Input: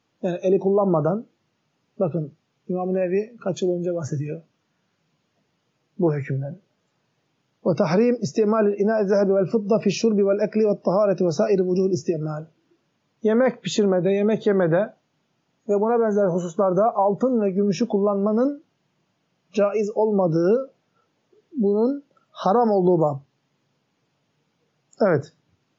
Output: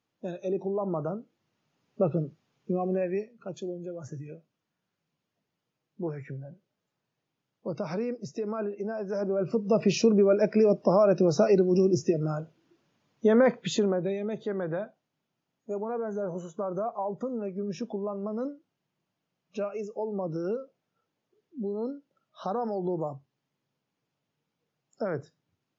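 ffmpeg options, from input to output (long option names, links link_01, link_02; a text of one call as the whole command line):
ffmpeg -i in.wav -af "volume=8dB,afade=type=in:start_time=1.1:duration=0.91:silence=0.398107,afade=type=out:start_time=2.73:duration=0.64:silence=0.316228,afade=type=in:start_time=9.13:duration=0.9:silence=0.281838,afade=type=out:start_time=13.39:duration=0.83:silence=0.298538" out.wav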